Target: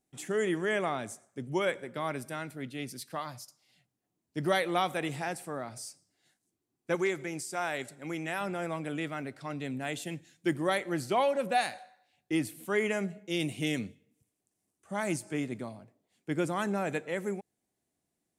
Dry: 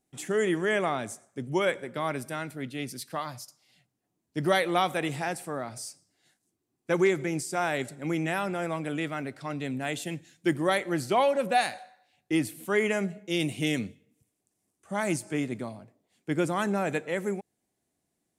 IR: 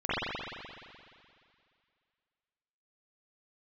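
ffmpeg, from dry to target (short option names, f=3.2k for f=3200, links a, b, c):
-filter_complex "[0:a]asettb=1/sr,asplit=3[a][b][c];[a]atrim=end=6.954[d];[b]atrim=start=6.95:end=8.41,asetpts=PTS-STARTPTS,afade=t=in:d=0.004:c=qsin,afade=t=out:st=1.456:d=0.004:c=qsin,lowshelf=f=390:g=-7[e];[c]atrim=start=8.406[f];[d][e]acrossfade=d=0.004:c1=hsin:c2=qsin[g];[g][f]acrossfade=d=0.004:c1=qsin:c2=hsin,volume=-3.5dB"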